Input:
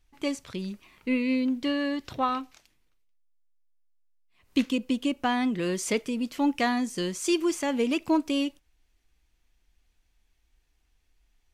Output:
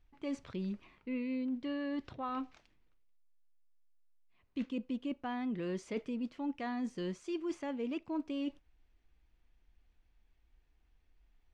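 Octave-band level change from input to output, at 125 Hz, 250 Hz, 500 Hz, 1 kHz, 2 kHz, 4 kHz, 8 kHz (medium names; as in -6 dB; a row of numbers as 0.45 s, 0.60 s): -6.5 dB, -10.0 dB, -11.0 dB, -13.0 dB, -14.5 dB, -17.0 dB, under -20 dB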